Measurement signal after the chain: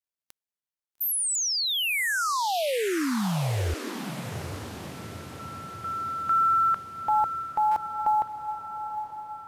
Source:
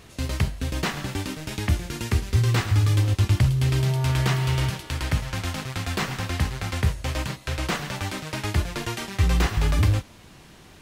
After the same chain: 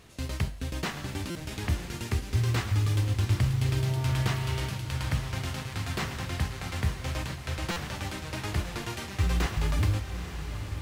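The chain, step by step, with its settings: echo that smears into a reverb 881 ms, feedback 56%, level -9 dB; companded quantiser 8-bit; buffer glitch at 1.30/7.71 s, samples 256, times 8; trim -6 dB

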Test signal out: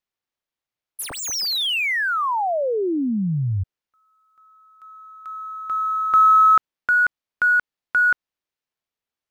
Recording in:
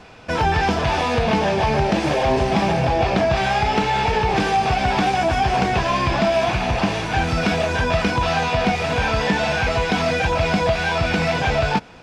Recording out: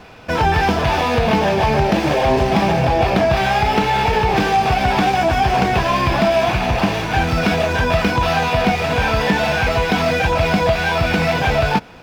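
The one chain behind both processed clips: median filter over 5 samples; trim +3 dB

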